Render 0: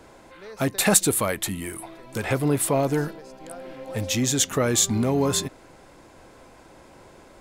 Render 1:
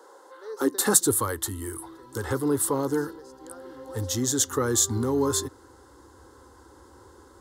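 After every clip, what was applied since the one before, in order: high-pass sweep 550 Hz -> 70 Hz, 0.45–1.27 s; static phaser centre 650 Hz, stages 6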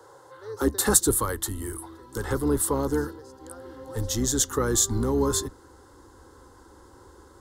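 octave divider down 2 oct, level -4 dB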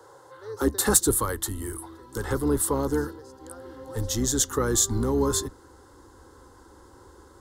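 overload inside the chain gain 9 dB

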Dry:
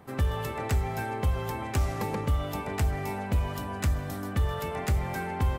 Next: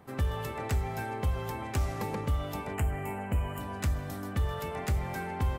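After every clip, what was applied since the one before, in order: time-frequency box 2.73–3.60 s, 3.2–6.7 kHz -16 dB; trim -3 dB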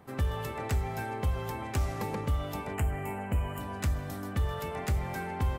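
no audible change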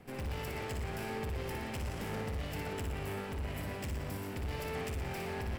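comb filter that takes the minimum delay 0.39 ms; hard clipper -37.5 dBFS, distortion -4 dB; on a send: flutter echo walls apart 10.1 m, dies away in 0.68 s

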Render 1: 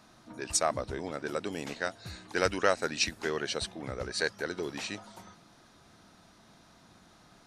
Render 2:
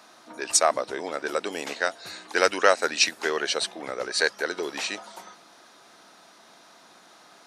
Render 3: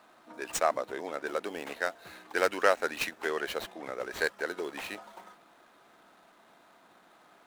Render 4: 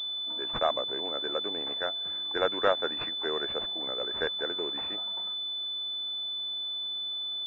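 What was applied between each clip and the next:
high-pass 410 Hz 12 dB/octave; trim +8 dB
median filter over 9 samples; trim -5 dB
rattle on loud lows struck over -45 dBFS, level -33 dBFS; class-D stage that switches slowly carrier 3.5 kHz

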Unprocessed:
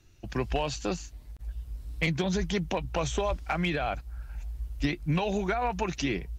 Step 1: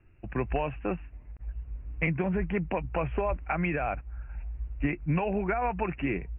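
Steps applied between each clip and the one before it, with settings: steep low-pass 2.7 kHz 96 dB/octave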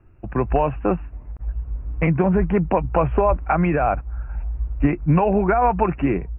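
resonant high shelf 1.6 kHz -7.5 dB, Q 1.5; level rider gain up to 3 dB; trim +7.5 dB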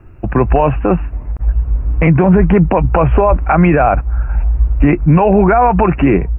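loudness maximiser +14 dB; trim -1 dB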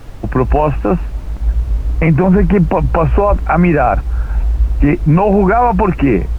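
added noise brown -28 dBFS; trim -1 dB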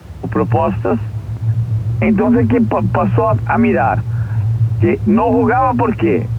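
frequency shift +58 Hz; trim -2 dB

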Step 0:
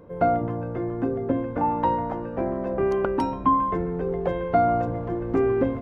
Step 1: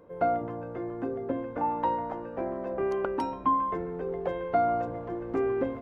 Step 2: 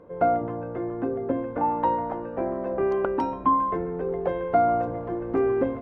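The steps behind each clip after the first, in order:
tone controls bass -8 dB, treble 0 dB; trim -4.5 dB
low-pass 2 kHz 6 dB/octave; trim +5 dB

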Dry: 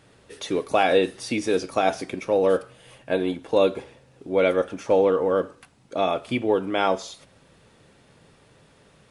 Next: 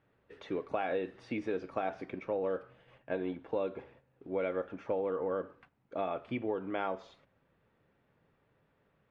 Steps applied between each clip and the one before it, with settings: Chebyshev low-pass 1.9 kHz, order 2; gate -51 dBFS, range -7 dB; compression, threshold -21 dBFS, peak gain reduction 6.5 dB; trim -8.5 dB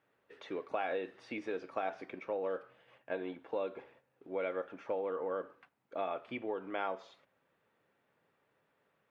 high-pass 480 Hz 6 dB/octave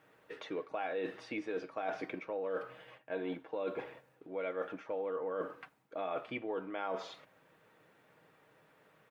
comb 6.4 ms, depth 31%; reverse; compression 5:1, threshold -46 dBFS, peak gain reduction 15 dB; reverse; trim +10 dB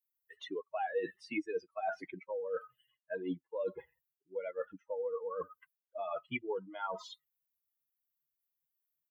expander on every frequency bin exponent 3; trim +7 dB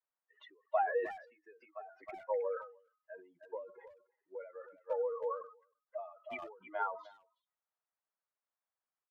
Butterworth band-pass 940 Hz, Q 0.86; speakerphone echo 310 ms, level -13 dB; endings held to a fixed fall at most 110 dB/s; trim +8 dB

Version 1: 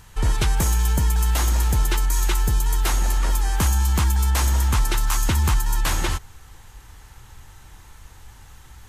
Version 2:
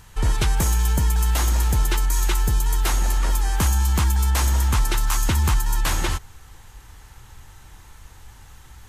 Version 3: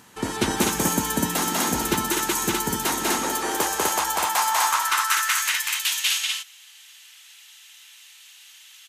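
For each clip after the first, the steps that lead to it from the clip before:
no audible change
high-pass sweep 250 Hz -> 2.9 kHz, 2.96–5.79 s; loudspeakers at several distances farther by 67 m -1 dB, 86 m -2 dB

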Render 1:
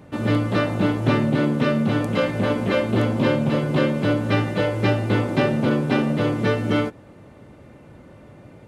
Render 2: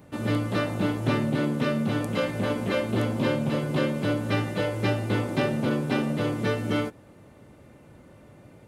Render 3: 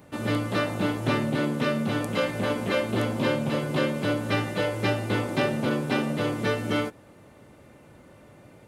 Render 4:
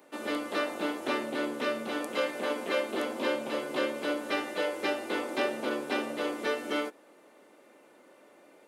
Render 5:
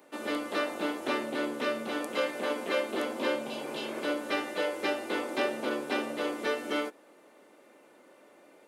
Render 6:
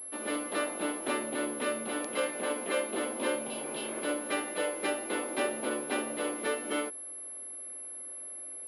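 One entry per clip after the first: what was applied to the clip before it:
treble shelf 7.3 kHz +11 dB; trim -5.5 dB
bass shelf 370 Hz -5 dB; trim +2.5 dB
high-pass 290 Hz 24 dB/octave; trim -3.5 dB
spectral replace 3.50–3.98 s, 240–2600 Hz
class-D stage that switches slowly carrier 11 kHz; trim -1.5 dB

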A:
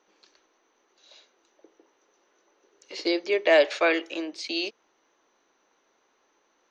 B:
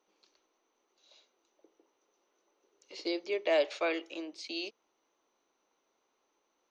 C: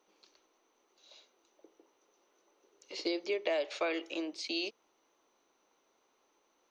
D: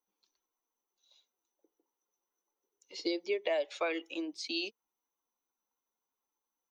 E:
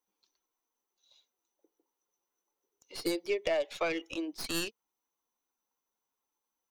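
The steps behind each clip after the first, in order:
peaking EQ 1.7 kHz -7 dB 0.42 oct; trim -8.5 dB
compression 5:1, threshold -34 dBFS, peak gain reduction 10.5 dB; trim +4 dB
expander on every frequency bin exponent 1.5; trim +2 dB
tracing distortion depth 0.098 ms; trim +1.5 dB

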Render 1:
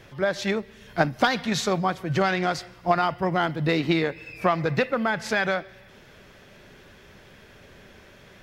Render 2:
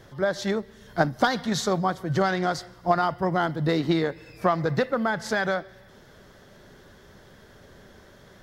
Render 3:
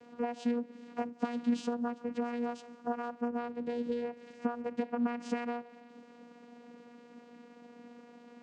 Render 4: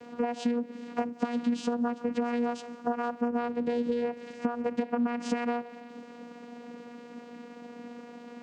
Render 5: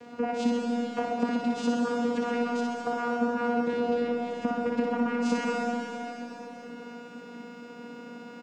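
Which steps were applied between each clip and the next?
peaking EQ 2.5 kHz -13.5 dB 0.45 oct
compression 6:1, threshold -30 dBFS, peak gain reduction 14 dB; vocoder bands 8, saw 239 Hz
compression 4:1, threshold -34 dBFS, peak gain reduction 8.5 dB; trim +8.5 dB
on a send: reverse bouncing-ball echo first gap 60 ms, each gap 1.15×, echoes 5; on the sum: algorithmic reverb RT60 3.9 s, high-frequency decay 1×, pre-delay 50 ms, DRR 1 dB

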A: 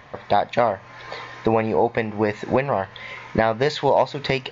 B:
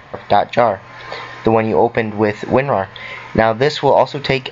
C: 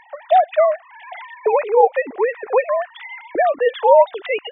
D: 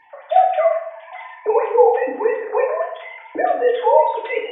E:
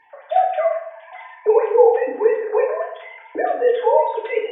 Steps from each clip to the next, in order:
band-stop 5.9 kHz, Q 15; trim +6 dB
formants replaced by sine waves; trim -1.5 dB
reverberation RT60 0.80 s, pre-delay 3 ms, DRR -4.5 dB; trim -7.5 dB
small resonant body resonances 420/1600 Hz, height 8 dB, ringing for 30 ms; trim -3.5 dB

